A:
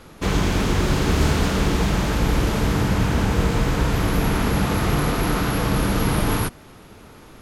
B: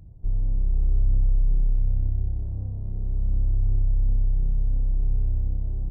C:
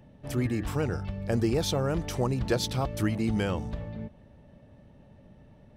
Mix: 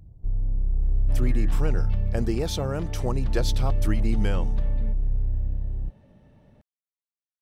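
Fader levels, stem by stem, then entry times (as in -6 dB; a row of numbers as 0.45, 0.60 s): off, -1.5 dB, -1.0 dB; off, 0.00 s, 0.85 s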